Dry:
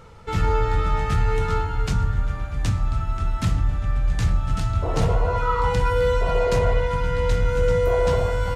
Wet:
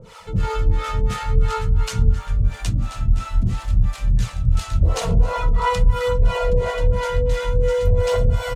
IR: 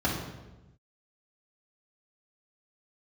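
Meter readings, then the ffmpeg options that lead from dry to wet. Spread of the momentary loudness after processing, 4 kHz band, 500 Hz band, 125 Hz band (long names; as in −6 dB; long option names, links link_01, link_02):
4 LU, +3.0 dB, −0.5 dB, +2.0 dB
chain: -filter_complex "[0:a]asplit=2[link_01][link_02];[1:a]atrim=start_sample=2205,afade=type=out:start_time=0.34:duration=0.01,atrim=end_sample=15435,asetrate=30429,aresample=44100[link_03];[link_02][link_03]afir=irnorm=-1:irlink=0,volume=-17dB[link_04];[link_01][link_04]amix=inputs=2:normalize=0,aphaser=in_gain=1:out_gain=1:delay=4.6:decay=0.34:speed=0.49:type=triangular,acrossover=split=460[link_05][link_06];[link_06]acompressor=mode=upward:threshold=-35dB:ratio=2.5[link_07];[link_05][link_07]amix=inputs=2:normalize=0,highshelf=frequency=2500:gain=9.5,acompressor=threshold=-9dB:ratio=6,aecho=1:1:178|262|513:0.106|0.188|0.266,acrossover=split=460[link_08][link_09];[link_08]aeval=exprs='val(0)*(1-1/2+1/2*cos(2*PI*2.9*n/s))':channel_layout=same[link_10];[link_09]aeval=exprs='val(0)*(1-1/2-1/2*cos(2*PI*2.9*n/s))':channel_layout=same[link_11];[link_10][link_11]amix=inputs=2:normalize=0"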